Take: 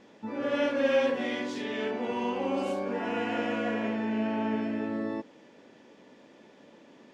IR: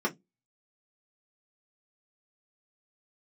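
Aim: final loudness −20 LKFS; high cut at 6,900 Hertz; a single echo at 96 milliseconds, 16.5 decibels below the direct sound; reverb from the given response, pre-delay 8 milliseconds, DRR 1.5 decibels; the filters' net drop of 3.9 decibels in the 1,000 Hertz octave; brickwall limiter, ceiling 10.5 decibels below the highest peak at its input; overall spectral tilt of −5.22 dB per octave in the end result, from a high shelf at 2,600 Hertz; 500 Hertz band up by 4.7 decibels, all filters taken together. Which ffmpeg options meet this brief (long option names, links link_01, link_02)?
-filter_complex "[0:a]lowpass=6900,equalizer=frequency=500:width_type=o:gain=7.5,equalizer=frequency=1000:width_type=o:gain=-7.5,highshelf=frequency=2600:gain=-8,alimiter=limit=-22dB:level=0:latency=1,aecho=1:1:96:0.15,asplit=2[link_01][link_02];[1:a]atrim=start_sample=2205,adelay=8[link_03];[link_02][link_03]afir=irnorm=-1:irlink=0,volume=-10.5dB[link_04];[link_01][link_04]amix=inputs=2:normalize=0,volume=5.5dB"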